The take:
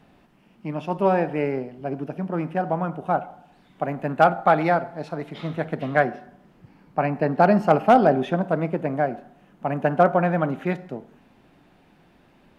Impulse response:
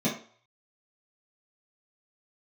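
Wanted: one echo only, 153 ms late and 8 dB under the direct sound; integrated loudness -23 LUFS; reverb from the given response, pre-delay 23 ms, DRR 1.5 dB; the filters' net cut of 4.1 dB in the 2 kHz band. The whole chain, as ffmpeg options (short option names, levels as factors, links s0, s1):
-filter_complex "[0:a]equalizer=f=2000:t=o:g=-6,aecho=1:1:153:0.398,asplit=2[s0][s1];[1:a]atrim=start_sample=2205,adelay=23[s2];[s1][s2]afir=irnorm=-1:irlink=0,volume=0.266[s3];[s0][s3]amix=inputs=2:normalize=0,volume=0.422"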